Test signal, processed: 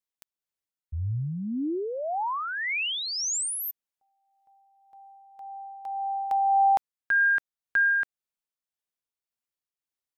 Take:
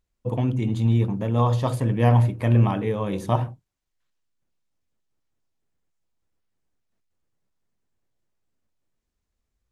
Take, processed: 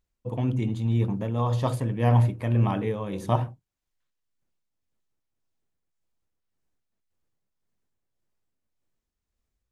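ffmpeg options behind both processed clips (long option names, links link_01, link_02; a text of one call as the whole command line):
ffmpeg -i in.wav -af "tremolo=f=1.8:d=0.4,volume=-1.5dB" out.wav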